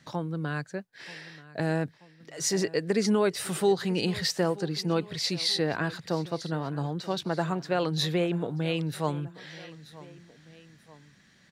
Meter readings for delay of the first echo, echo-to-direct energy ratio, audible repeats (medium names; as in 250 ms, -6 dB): 933 ms, -18.0 dB, 2